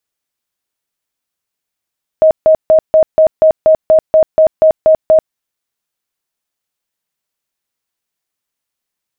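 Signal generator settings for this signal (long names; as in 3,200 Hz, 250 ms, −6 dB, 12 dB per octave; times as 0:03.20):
tone bursts 631 Hz, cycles 56, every 0.24 s, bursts 13, −3.5 dBFS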